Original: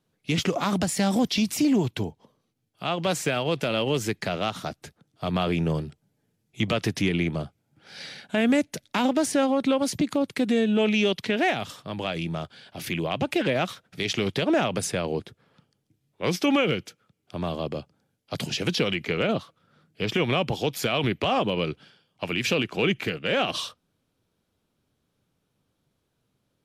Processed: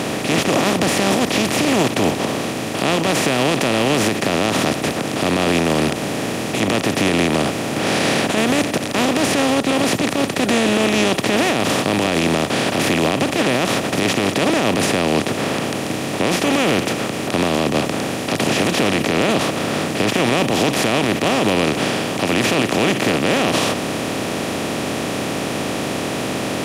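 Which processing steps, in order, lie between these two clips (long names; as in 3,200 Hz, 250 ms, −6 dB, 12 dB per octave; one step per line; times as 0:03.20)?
compressor on every frequency bin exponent 0.2
brickwall limiter −7 dBFS, peak gain reduction 10 dB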